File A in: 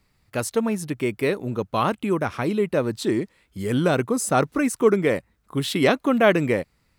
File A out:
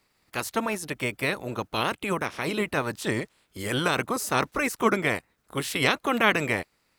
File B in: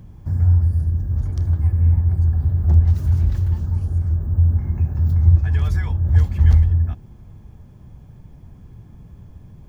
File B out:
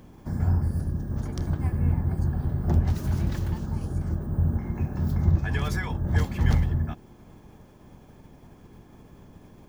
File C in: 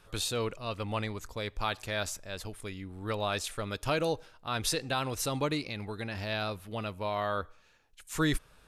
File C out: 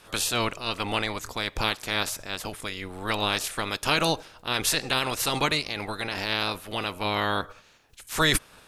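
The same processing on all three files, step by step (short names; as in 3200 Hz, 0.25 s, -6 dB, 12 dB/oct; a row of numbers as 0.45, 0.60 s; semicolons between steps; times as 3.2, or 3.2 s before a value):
spectral limiter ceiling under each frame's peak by 18 dB; match loudness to -27 LUFS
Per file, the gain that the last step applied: -4.5, -8.0, +6.0 dB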